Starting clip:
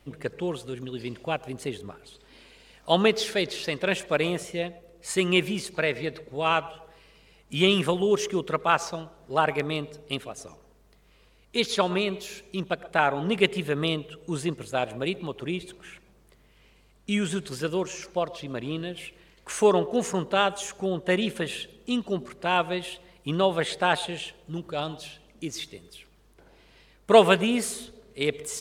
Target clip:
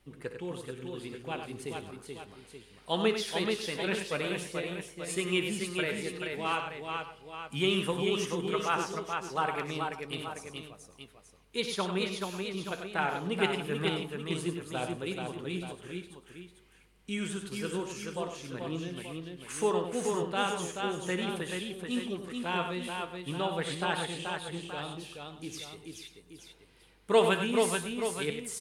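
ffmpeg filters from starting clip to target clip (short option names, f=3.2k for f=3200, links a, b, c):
-af "flanger=delay=5.2:depth=6.4:regen=71:speed=0.42:shape=sinusoidal,superequalizer=8b=0.562:16b=1.78,aecho=1:1:61|96|432|542|879:0.224|0.422|0.596|0.119|0.299,volume=-3.5dB"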